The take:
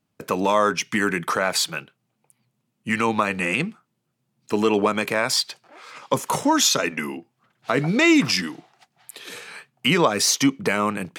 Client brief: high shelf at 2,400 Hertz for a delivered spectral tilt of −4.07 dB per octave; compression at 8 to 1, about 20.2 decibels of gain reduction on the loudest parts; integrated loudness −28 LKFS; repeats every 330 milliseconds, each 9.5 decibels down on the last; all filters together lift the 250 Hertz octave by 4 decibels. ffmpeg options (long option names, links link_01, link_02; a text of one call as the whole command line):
ffmpeg -i in.wav -af "equalizer=frequency=250:width_type=o:gain=5,highshelf=frequency=2400:gain=4.5,acompressor=threshold=-31dB:ratio=8,aecho=1:1:330|660|990|1320:0.335|0.111|0.0365|0.012,volume=6.5dB" out.wav